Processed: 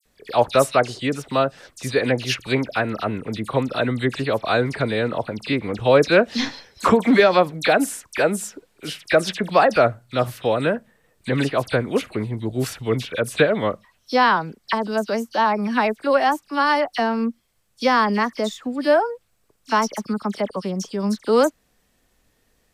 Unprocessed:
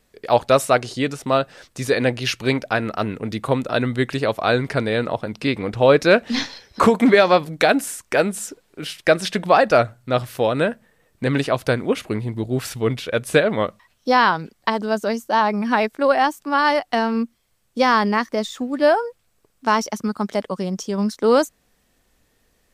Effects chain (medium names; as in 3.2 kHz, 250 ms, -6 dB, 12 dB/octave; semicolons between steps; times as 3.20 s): phase dispersion lows, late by 56 ms, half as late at 2.8 kHz; trim -1 dB